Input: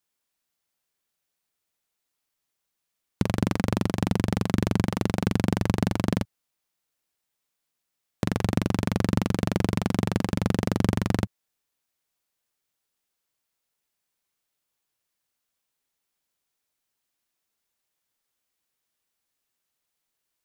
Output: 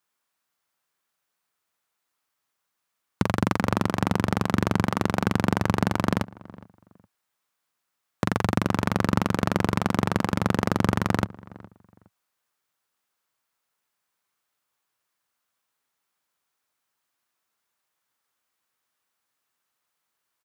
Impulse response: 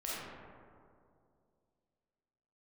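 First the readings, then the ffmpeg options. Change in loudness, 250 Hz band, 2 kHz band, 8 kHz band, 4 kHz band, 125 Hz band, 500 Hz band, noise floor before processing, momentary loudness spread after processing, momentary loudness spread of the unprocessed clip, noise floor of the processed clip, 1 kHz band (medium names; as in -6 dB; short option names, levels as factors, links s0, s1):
+1.0 dB, +0.5 dB, +5.0 dB, +0.5 dB, +1.0 dB, -0.5 dB, +2.0 dB, -82 dBFS, 4 LU, 4 LU, -81 dBFS, +6.5 dB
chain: -filter_complex "[0:a]highpass=72,equalizer=f=1200:w=0.98:g=8.5,asplit=2[s0][s1];[s1]adelay=414,lowpass=f=1400:p=1,volume=0.1,asplit=2[s2][s3];[s3]adelay=414,lowpass=f=1400:p=1,volume=0.25[s4];[s2][s4]amix=inputs=2:normalize=0[s5];[s0][s5]amix=inputs=2:normalize=0"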